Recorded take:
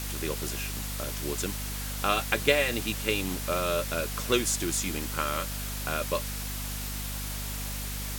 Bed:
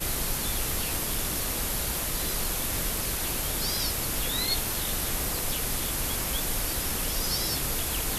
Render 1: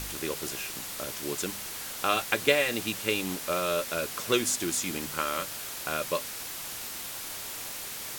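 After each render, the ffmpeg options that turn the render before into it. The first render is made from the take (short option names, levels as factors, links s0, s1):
-af "bandreject=f=50:t=h:w=4,bandreject=f=100:t=h:w=4,bandreject=f=150:t=h:w=4,bandreject=f=200:t=h:w=4,bandreject=f=250:t=h:w=4"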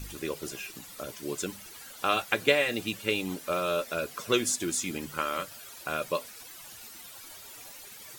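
-af "afftdn=nr=13:nf=-39"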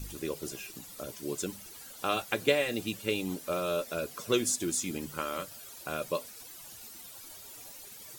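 -af "equalizer=f=1800:w=0.55:g=-6"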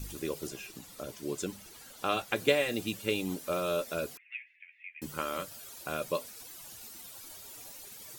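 -filter_complex "[0:a]asettb=1/sr,asplit=3[s0][s1][s2];[s0]atrim=end=0.474[s3];[s1]atrim=start=0.47:end=2.36,asetpts=PTS-STARTPTS,afade=t=in:d=0.004:c=qsin,afade=t=out:st=1.886:d=0.004:c=qsin,highshelf=f=6800:g=-6[s4];[s2]atrim=start=2.356[s5];[s3][s4]acrossfade=d=0.004:c1=hsin:c2=qsin[s6];[s6][s5]acrossfade=d=0.004:c1=qsin:c2=hsin,asettb=1/sr,asplit=3[s7][s8][s9];[s7]atrim=end=4.174[s10];[s8]atrim=start=4.17:end=5.02,asetpts=PTS-STARTPTS,afade=t=in:d=0.004:c=qsin,afade=t=out:st=0.846:d=0.004:c=qsin,asuperpass=centerf=2200:order=8:qfactor=2.7[s11];[s9]atrim=start=5.016[s12];[s10][s11]acrossfade=d=0.004:c1=hsin:c2=qsin[s13];[s13][s12]acrossfade=d=0.004:c1=qsin:c2=hsin"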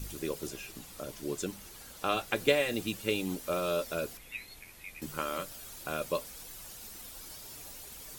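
-filter_complex "[1:a]volume=0.0596[s0];[0:a][s0]amix=inputs=2:normalize=0"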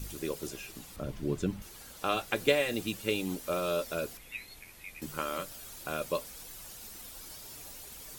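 -filter_complex "[0:a]asettb=1/sr,asplit=3[s0][s1][s2];[s0]atrim=end=0.964[s3];[s1]atrim=start=0.96:end=1.62,asetpts=PTS-STARTPTS,afade=t=in:d=0.004:c=qsin,afade=t=out:st=0.656:d=0.004:c=qsin,bass=f=250:g=12,treble=f=4000:g=-10[s4];[s2]atrim=start=1.616[s5];[s3][s4]acrossfade=d=0.004:c1=hsin:c2=qsin[s6];[s6][s5]acrossfade=d=0.004:c1=qsin:c2=hsin"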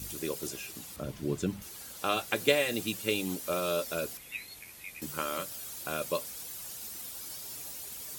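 -af "highpass=70,highshelf=f=4100:g=6"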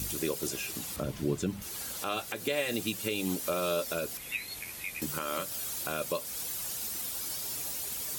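-filter_complex "[0:a]asplit=2[s0][s1];[s1]acompressor=threshold=0.00794:ratio=6,volume=1.41[s2];[s0][s2]amix=inputs=2:normalize=0,alimiter=limit=0.112:level=0:latency=1:release=179"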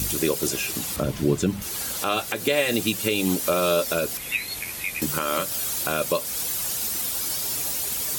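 -af "volume=2.82"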